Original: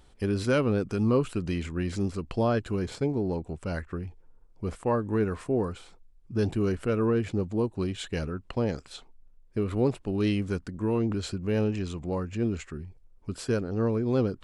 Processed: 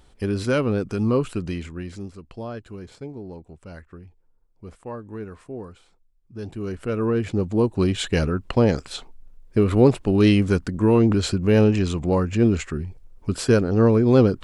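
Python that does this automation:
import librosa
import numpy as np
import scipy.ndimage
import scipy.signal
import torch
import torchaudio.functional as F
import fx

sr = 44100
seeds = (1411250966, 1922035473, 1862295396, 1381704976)

y = fx.gain(x, sr, db=fx.line((1.4, 3.0), (2.16, -8.0), (6.38, -8.0), (6.89, 1.0), (7.9, 10.0)))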